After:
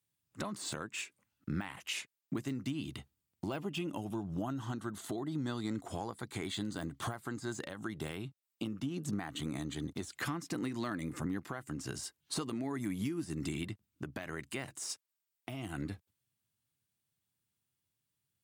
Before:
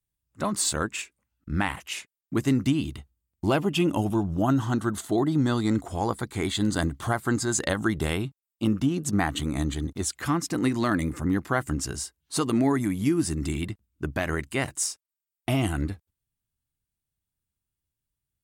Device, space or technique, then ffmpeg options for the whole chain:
broadcast voice chain: -af "highpass=f=100:w=0.5412,highpass=f=100:w=1.3066,deesser=0.7,acompressor=threshold=0.0178:ratio=5,equalizer=f=3400:t=o:w=1.8:g=3,alimiter=level_in=1.5:limit=0.0631:level=0:latency=1:release=446,volume=0.668,volume=1.19"

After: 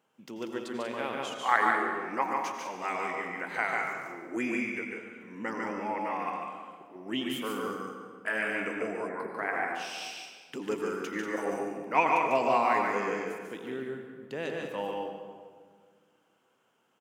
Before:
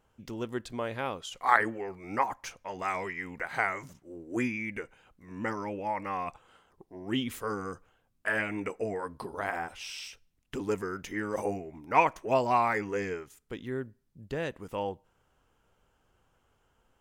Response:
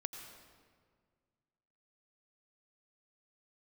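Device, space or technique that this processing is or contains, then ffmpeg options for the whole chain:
stadium PA: -filter_complex "[0:a]highpass=f=170:w=0.5412,highpass=f=170:w=1.3066,equalizer=f=2700:t=o:w=0.66:g=3,aecho=1:1:145.8|189.5:0.631|0.398[s0];[1:a]atrim=start_sample=2205[s1];[s0][s1]afir=irnorm=-1:irlink=0,asettb=1/sr,asplit=3[s2][s3][s4];[s2]atrim=end=9.094[s5];[s3]atrim=start=9.09:end=9.75,asetpts=PTS-STARTPTS,afade=t=in:d=0.004:c=qsin,afade=t=out:st=0.656:d=0.004:c=qsin,highshelf=f=2600:t=q:w=3:g=-7.5[s6];[s4]atrim=start=9.746[s7];[s5][s6]acrossfade=d=0.004:c1=hsin:c2=qsin[s8];[s8][s7]acrossfade=d=0.004:c1=qsin:c2=hsin"

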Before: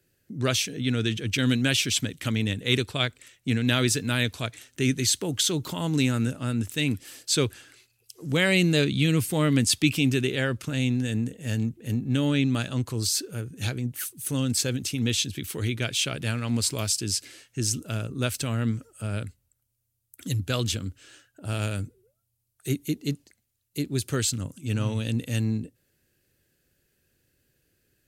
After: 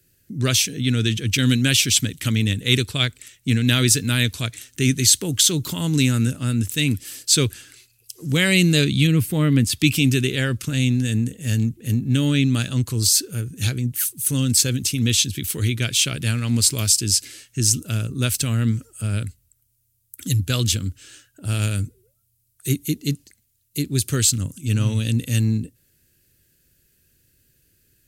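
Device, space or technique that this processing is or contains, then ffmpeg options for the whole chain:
smiley-face EQ: -filter_complex "[0:a]lowshelf=f=130:g=5.5,equalizer=f=740:t=o:w=1.6:g=-7.5,highshelf=f=5300:g=7.5,asettb=1/sr,asplit=3[s0][s1][s2];[s0]atrim=end=9.074[s3];[s1]atrim=start=9.07:end=9.8,asetpts=PTS-STARTPTS,afade=t=in:d=0.004:c=qsin,afade=t=out:st=0.726:d=0.004:c=qsin,equalizer=f=7400:t=o:w=2.2:g=-11.5[s4];[s2]atrim=start=9.796[s5];[s3][s4]acrossfade=d=0.004:c1=hsin:c2=qsin[s6];[s6][s5]acrossfade=d=0.004:c1=qsin:c2=hsin,volume=1.68"

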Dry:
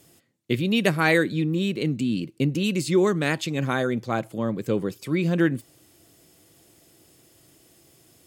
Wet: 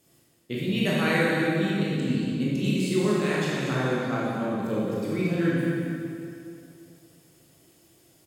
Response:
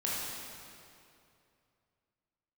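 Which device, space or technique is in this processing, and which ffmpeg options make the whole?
cave: -filter_complex "[0:a]aecho=1:1:232:0.355[s0];[1:a]atrim=start_sample=2205[s1];[s0][s1]afir=irnorm=-1:irlink=0,volume=0.376"

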